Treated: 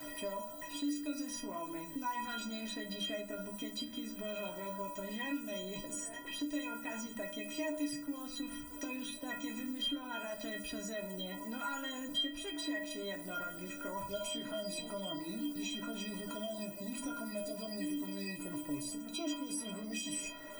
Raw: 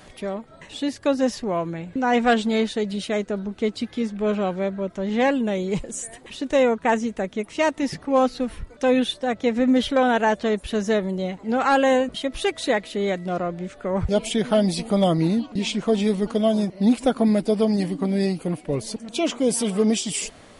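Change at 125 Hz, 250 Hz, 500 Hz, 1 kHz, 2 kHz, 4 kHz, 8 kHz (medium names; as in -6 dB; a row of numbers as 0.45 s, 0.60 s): -22.5 dB, -17.5 dB, -21.5 dB, -18.5 dB, -14.5 dB, -9.0 dB, -10.0 dB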